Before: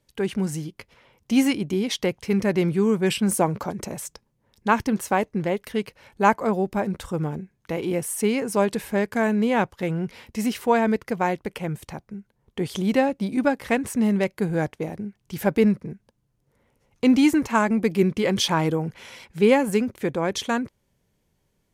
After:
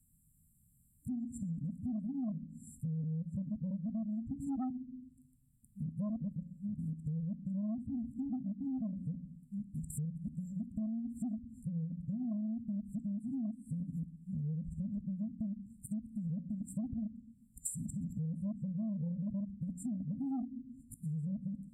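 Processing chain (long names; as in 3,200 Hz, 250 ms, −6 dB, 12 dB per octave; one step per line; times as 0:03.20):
played backwards from end to start
brick-wall band-stop 280–7,200 Hz
convolution reverb RT60 0.65 s, pre-delay 3 ms, DRR 13.5 dB
treble cut that deepens with the level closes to 550 Hz, closed at −23.5 dBFS
guitar amp tone stack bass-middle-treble 5-5-5
in parallel at −9 dB: sine wavefolder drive 9 dB, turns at −27 dBFS
on the sum: hum removal 180.1 Hz, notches 3
hollow resonant body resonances 1,000/2,600 Hz, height 11 dB, ringing for 25 ms
downward compressor, threshold −43 dBFS, peak gain reduction 12 dB
level +7 dB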